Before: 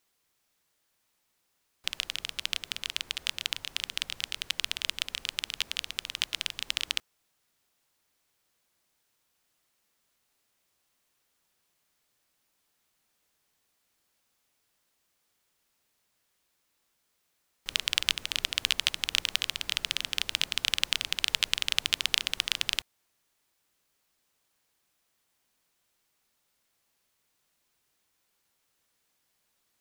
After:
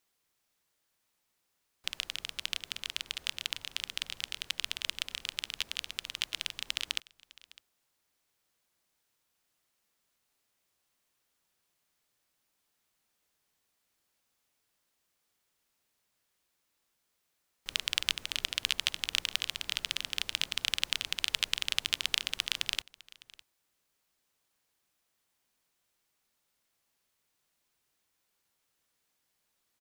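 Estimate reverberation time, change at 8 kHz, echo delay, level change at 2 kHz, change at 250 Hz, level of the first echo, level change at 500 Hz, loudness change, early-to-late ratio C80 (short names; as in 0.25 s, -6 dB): none, -3.5 dB, 0.606 s, -3.5 dB, -3.5 dB, -22.0 dB, -3.5 dB, -3.5 dB, none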